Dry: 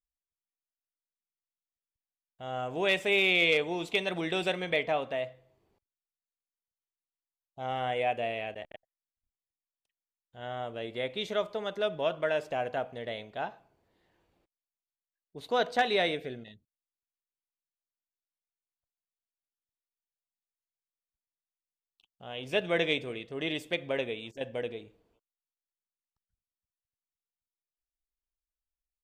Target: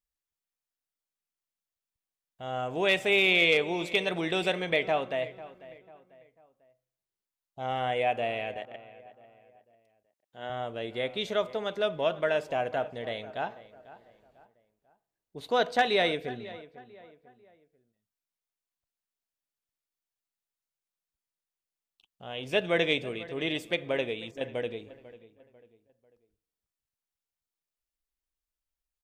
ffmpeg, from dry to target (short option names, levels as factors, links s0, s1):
-filter_complex "[0:a]asettb=1/sr,asplit=3[s0][s1][s2];[s0]atrim=end=8.574[s3];[s1]atrim=start=8.57:end=10.5,asetpts=PTS-STARTPTS,afade=t=in:d=0.004:c=qsin,afade=t=out:st=1.926:d=0.004:c=qsin,highpass=180[s4];[s2]atrim=start=10.496[s5];[s3][s4]acrossfade=d=0.004:c1=hsin:c2=qsin[s6];[s6][s5]acrossfade=d=0.004:c1=qsin:c2=hsin,asplit=2[s7][s8];[s8]adelay=495,lowpass=f=2300:p=1,volume=0.141,asplit=2[s9][s10];[s10]adelay=495,lowpass=f=2300:p=1,volume=0.4,asplit=2[s11][s12];[s12]adelay=495,lowpass=f=2300:p=1,volume=0.4[s13];[s7][s9][s11][s13]amix=inputs=4:normalize=0,volume=1.26"